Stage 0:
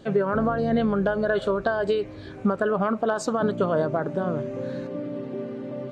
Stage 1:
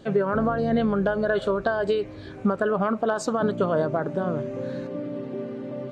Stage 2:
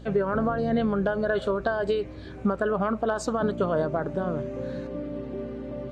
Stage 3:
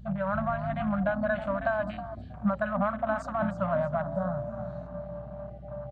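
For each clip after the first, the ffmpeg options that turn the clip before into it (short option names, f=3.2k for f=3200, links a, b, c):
-af anull
-af "aeval=exprs='val(0)+0.00794*(sin(2*PI*60*n/s)+sin(2*PI*2*60*n/s)/2+sin(2*PI*3*60*n/s)/3+sin(2*PI*4*60*n/s)/4+sin(2*PI*5*60*n/s)/5)':c=same,volume=-2dB"
-filter_complex "[0:a]afftfilt=real='re*(1-between(b*sr/4096,220,540))':imag='im*(1-between(b*sr/4096,220,540))':win_size=4096:overlap=0.75,asplit=5[a][b][c][d][e];[b]adelay=318,afreqshift=36,volume=-11.5dB[f];[c]adelay=636,afreqshift=72,volume=-20.1dB[g];[d]adelay=954,afreqshift=108,volume=-28.8dB[h];[e]adelay=1272,afreqshift=144,volume=-37.4dB[i];[a][f][g][h][i]amix=inputs=5:normalize=0,afwtdn=0.0126,volume=-1dB"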